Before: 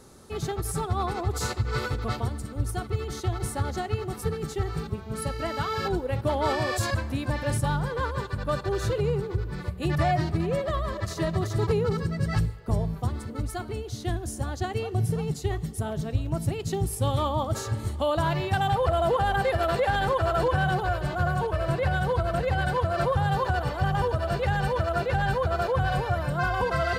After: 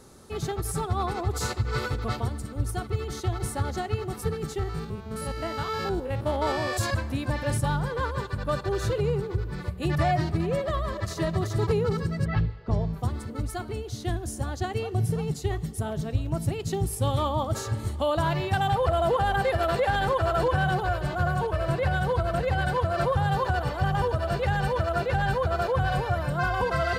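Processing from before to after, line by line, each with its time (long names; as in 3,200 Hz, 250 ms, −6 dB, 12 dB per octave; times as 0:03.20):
0:04.59–0:06.77: spectrum averaged block by block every 50 ms
0:12.24–0:12.92: low-pass filter 3,100 Hz → 6,900 Hz 24 dB per octave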